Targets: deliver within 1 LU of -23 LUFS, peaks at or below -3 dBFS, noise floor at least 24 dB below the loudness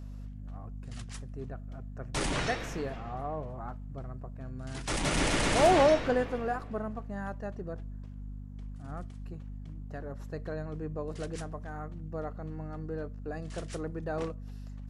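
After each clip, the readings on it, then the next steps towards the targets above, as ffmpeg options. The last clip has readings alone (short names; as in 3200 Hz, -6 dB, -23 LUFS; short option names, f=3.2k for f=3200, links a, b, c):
hum 50 Hz; harmonics up to 250 Hz; hum level -39 dBFS; loudness -33.0 LUFS; peak -14.5 dBFS; loudness target -23.0 LUFS
-> -af "bandreject=f=50:t=h:w=6,bandreject=f=100:t=h:w=6,bandreject=f=150:t=h:w=6,bandreject=f=200:t=h:w=6,bandreject=f=250:t=h:w=6"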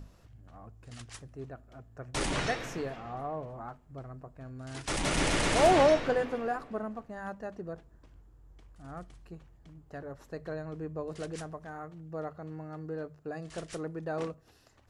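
hum none; loudness -32.5 LUFS; peak -13.5 dBFS; loudness target -23.0 LUFS
-> -af "volume=9.5dB"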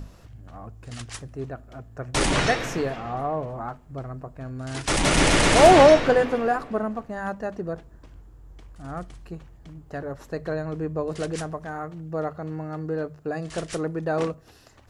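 loudness -23.0 LUFS; peak -4.0 dBFS; noise floor -50 dBFS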